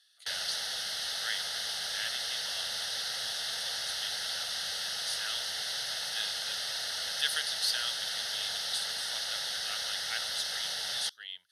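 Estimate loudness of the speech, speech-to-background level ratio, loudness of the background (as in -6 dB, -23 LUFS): -38.5 LUFS, -6.0 dB, -32.5 LUFS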